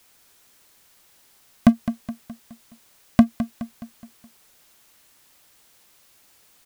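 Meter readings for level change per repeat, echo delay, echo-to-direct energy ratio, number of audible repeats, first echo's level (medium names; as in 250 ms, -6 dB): -6.5 dB, 210 ms, -11.0 dB, 4, -12.0 dB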